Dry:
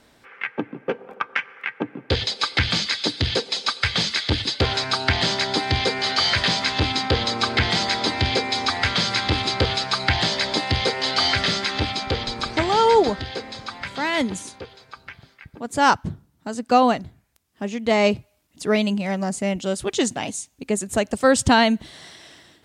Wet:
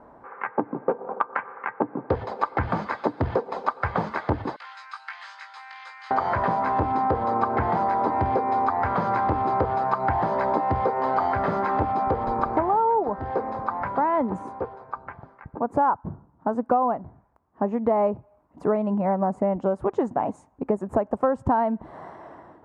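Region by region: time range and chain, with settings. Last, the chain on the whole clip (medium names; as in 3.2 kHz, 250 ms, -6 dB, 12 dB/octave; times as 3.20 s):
4.56–6.11 s: Bessel high-pass 3 kHz, order 4 + doubling 19 ms -4.5 dB
whole clip: FFT filter 110 Hz 0 dB, 430 Hz +5 dB, 1 kHz +12 dB, 3.5 kHz -30 dB; compression 6:1, threshold -22 dBFS; trim +2 dB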